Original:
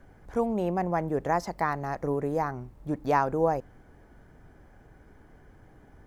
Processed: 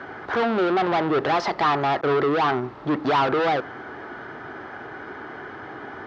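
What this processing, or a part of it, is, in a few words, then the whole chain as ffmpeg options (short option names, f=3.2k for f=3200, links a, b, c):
overdrive pedal into a guitar cabinet: -filter_complex "[0:a]asettb=1/sr,asplit=3[a][b][c];[a]atrim=end=2.014[d];[b]atrim=start=2.01:end=2.63,asetpts=PTS-STARTPTS,afade=t=in:d=0.004:c=qsin,afade=t=out:st=0.616:d=0.004:c=qsin,agate=range=-33dB:threshold=-32dB:ratio=3:detection=peak[e];[c]atrim=start=2.626[f];[d][e]acrossfade=d=0.004:c1=hsin:c2=qsin[g];[g][f]acrossfade=d=0.004:c1=qsin:c2=hsin,asplit=2[h][i];[i]highpass=f=720:p=1,volume=35dB,asoftclip=type=tanh:threshold=-10.5dB[j];[h][j]amix=inputs=2:normalize=0,lowpass=f=6.8k:p=1,volume=-6dB,highpass=100,equalizer=f=180:t=q:w=4:g=-7,equalizer=f=370:t=q:w=4:g=5,equalizer=f=530:t=q:w=4:g=-5,equalizer=f=1.3k:t=q:w=4:g=6,equalizer=f=2.4k:t=q:w=4:g=-3,lowpass=f=4.2k:w=0.5412,lowpass=f=4.2k:w=1.3066,volume=-3.5dB"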